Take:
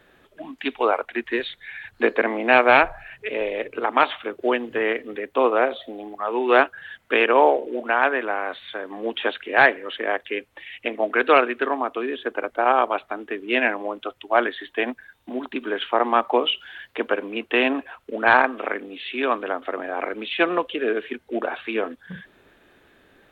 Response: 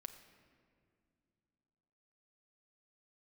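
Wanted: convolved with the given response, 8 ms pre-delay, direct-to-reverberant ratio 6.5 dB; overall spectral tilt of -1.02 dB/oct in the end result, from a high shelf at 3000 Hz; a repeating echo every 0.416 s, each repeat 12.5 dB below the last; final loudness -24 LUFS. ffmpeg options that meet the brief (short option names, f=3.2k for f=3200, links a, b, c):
-filter_complex "[0:a]highshelf=f=3k:g=-6.5,aecho=1:1:416|832|1248:0.237|0.0569|0.0137,asplit=2[a][b];[1:a]atrim=start_sample=2205,adelay=8[c];[b][c]afir=irnorm=-1:irlink=0,volume=-1.5dB[d];[a][d]amix=inputs=2:normalize=0,volume=-2dB"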